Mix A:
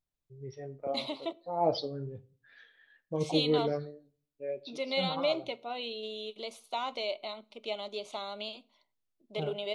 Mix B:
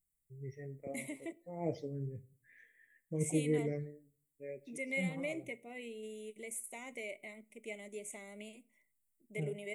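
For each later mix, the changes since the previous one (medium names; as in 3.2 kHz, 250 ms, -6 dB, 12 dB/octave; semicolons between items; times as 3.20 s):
master: add FFT filter 180 Hz 0 dB, 270 Hz -3 dB, 460 Hz -6 dB, 830 Hz -19 dB, 1.4 kHz -23 dB, 2 kHz +6 dB, 3.1 kHz -19 dB, 4.4 kHz -30 dB, 7.8 kHz +15 dB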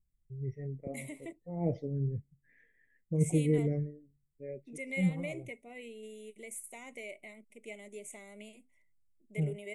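first voice: add tilt EQ -3.5 dB/octave; reverb: off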